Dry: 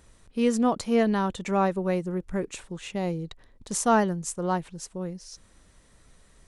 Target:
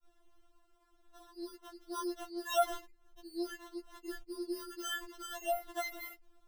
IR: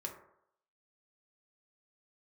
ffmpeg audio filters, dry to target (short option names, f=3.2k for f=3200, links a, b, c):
-af "areverse,acrusher=samples=19:mix=1:aa=0.000001,afftfilt=real='re*4*eq(mod(b,16),0)':imag='im*4*eq(mod(b,16),0)':win_size=2048:overlap=0.75,volume=-8.5dB"